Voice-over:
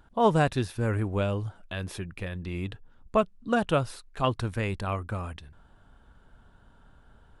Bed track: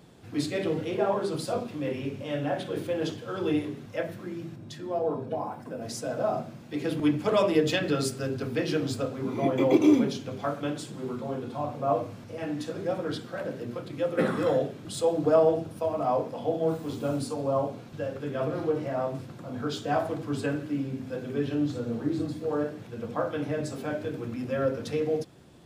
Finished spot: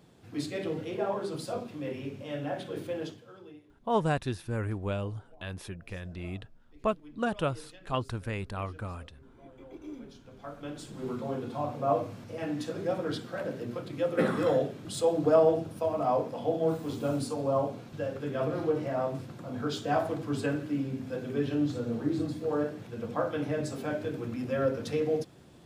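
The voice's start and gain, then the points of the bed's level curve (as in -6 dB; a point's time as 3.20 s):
3.70 s, -5.0 dB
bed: 2.97 s -5 dB
3.62 s -27 dB
9.72 s -27 dB
11.09 s -1 dB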